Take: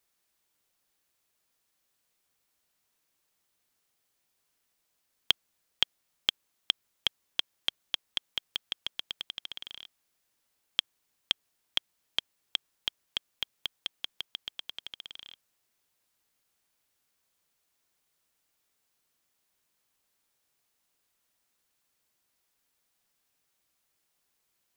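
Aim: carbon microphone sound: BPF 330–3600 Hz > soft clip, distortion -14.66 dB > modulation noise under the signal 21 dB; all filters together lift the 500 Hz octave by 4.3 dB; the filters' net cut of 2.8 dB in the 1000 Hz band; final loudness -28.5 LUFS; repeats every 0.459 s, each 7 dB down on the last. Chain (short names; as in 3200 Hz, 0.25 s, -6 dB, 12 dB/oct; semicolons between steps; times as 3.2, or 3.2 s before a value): BPF 330–3600 Hz; bell 500 Hz +8 dB; bell 1000 Hz -6 dB; feedback echo 0.459 s, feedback 45%, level -7 dB; soft clip -13.5 dBFS; modulation noise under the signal 21 dB; gain +9 dB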